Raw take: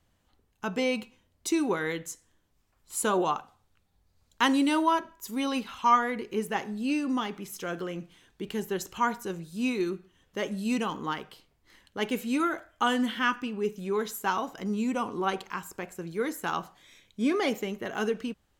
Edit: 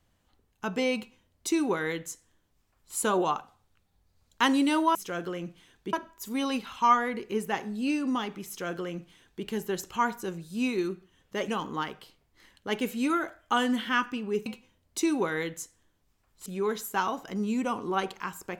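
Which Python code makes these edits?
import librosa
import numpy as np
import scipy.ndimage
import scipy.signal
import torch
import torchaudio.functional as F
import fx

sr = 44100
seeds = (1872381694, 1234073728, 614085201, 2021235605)

y = fx.edit(x, sr, fx.duplicate(start_s=0.95, length_s=2.0, to_s=13.76),
    fx.duplicate(start_s=7.49, length_s=0.98, to_s=4.95),
    fx.cut(start_s=10.5, length_s=0.28), tone=tone)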